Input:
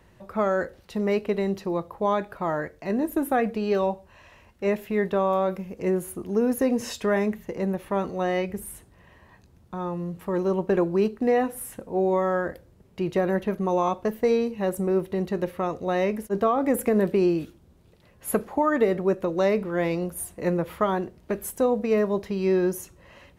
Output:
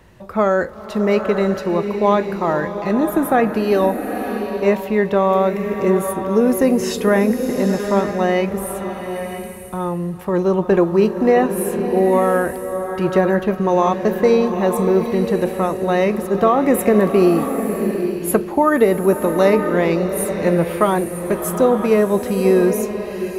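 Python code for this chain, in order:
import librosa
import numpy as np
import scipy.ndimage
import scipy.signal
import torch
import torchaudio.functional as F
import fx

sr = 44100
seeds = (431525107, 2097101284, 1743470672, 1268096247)

y = fx.rev_bloom(x, sr, seeds[0], attack_ms=940, drr_db=6.0)
y = y * librosa.db_to_amplitude(7.5)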